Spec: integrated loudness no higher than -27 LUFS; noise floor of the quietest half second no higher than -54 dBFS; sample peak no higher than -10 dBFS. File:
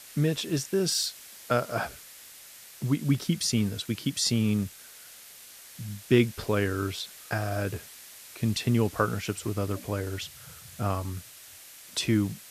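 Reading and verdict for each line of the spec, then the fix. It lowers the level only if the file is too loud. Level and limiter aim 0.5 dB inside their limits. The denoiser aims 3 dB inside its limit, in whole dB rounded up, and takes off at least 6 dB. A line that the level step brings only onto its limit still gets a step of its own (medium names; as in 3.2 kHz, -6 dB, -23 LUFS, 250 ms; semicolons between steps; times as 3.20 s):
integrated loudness -28.5 LUFS: pass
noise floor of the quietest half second -49 dBFS: fail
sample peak -8.5 dBFS: fail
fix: noise reduction 8 dB, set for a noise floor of -49 dBFS; peak limiter -10.5 dBFS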